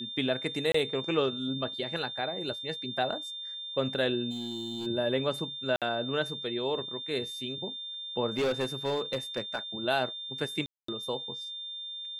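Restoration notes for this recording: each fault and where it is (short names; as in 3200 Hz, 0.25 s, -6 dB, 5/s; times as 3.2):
tone 3600 Hz -37 dBFS
0.72–0.74 gap 24 ms
4.3–4.87 clipped -32.5 dBFS
5.76–5.82 gap 57 ms
8.29–9.59 clipped -24.5 dBFS
10.66–10.88 gap 0.224 s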